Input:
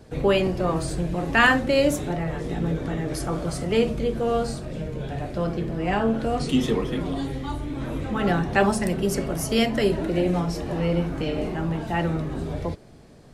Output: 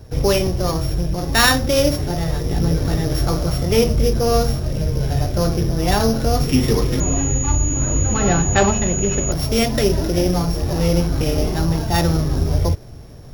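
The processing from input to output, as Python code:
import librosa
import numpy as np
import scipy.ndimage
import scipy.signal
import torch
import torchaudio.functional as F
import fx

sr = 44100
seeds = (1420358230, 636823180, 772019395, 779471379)

y = np.r_[np.sort(x[:len(x) // 8 * 8].reshape(-1, 8), axis=1).ravel(), x[len(x) // 8 * 8:]]
y = fx.low_shelf_res(y, sr, hz=140.0, db=8.0, q=1.5)
y = fx.rider(y, sr, range_db=10, speed_s=2.0)
y = fx.pwm(y, sr, carrier_hz=6800.0, at=(7.0, 9.32))
y = y * librosa.db_to_amplitude(4.5)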